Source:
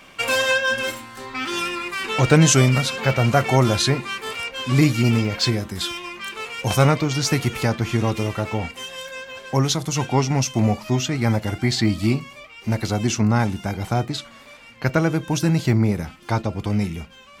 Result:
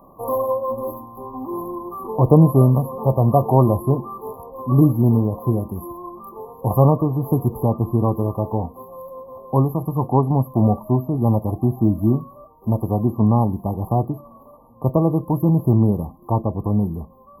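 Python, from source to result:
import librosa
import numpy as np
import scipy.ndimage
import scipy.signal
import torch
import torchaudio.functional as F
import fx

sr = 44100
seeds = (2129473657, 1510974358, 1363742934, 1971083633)

y = fx.brickwall_bandstop(x, sr, low_hz=1200.0, high_hz=11000.0)
y = F.gain(torch.from_numpy(y), 2.5).numpy()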